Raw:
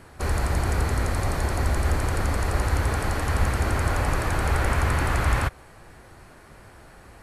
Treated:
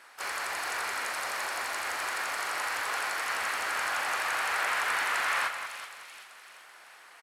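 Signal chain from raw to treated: high-pass 1.1 kHz 12 dB/octave; doubling 37 ms -13 dB; harmony voices +3 st -5 dB; treble shelf 9.9 kHz -8 dB; on a send: two-band feedback delay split 2.5 kHz, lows 185 ms, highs 384 ms, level -8.5 dB

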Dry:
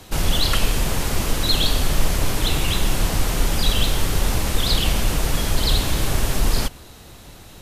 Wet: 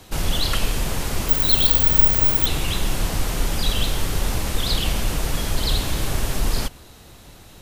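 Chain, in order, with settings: 1.29–2.46 s: careless resampling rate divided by 2×, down none, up zero stuff; trim -2.5 dB

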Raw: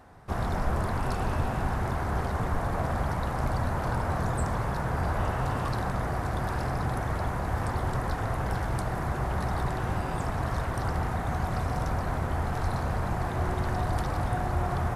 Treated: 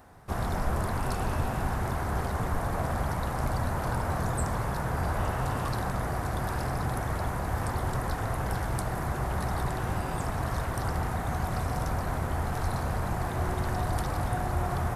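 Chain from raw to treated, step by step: treble shelf 8.5 kHz +11 dB; trim -1 dB

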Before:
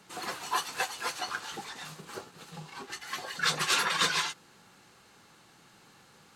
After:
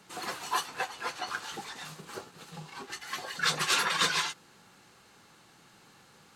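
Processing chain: 0.65–1.26 s: treble shelf 3 kHz -> 6.1 kHz -10.5 dB

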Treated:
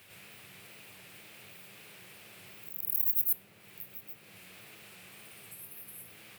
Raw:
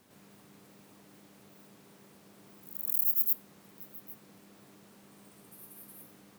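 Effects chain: wow and flutter 140 cents; fifteen-band graphic EQ 100 Hz +7 dB, 250 Hz -11 dB, 1 kHz -5 dB, 2.5 kHz +9 dB, 6.3 kHz -6 dB; tape noise reduction on one side only encoder only

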